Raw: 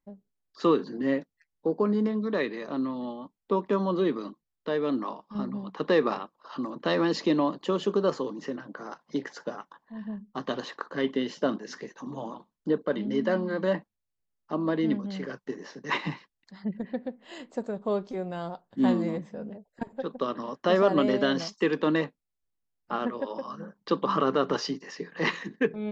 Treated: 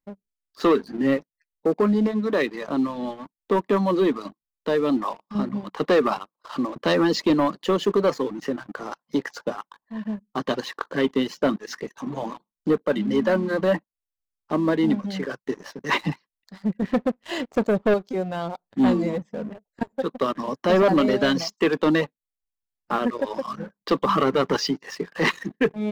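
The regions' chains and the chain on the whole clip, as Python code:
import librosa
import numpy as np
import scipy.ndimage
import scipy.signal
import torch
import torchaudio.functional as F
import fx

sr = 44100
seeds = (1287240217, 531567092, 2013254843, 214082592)

y = fx.chain(x, sr, fx.leveller(passes=2),
    fx.air_absorb(metres=59.0), at=(16.82, 17.94))
y = fx.chain(y, sr, fx.low_shelf(hz=340.0, db=5.0),
    fx.transient(attack_db=-4, sustain_db=2), at=(20.47, 20.95))
y = fx.dereverb_blind(y, sr, rt60_s=0.56)
y = fx.leveller(y, sr, passes=2)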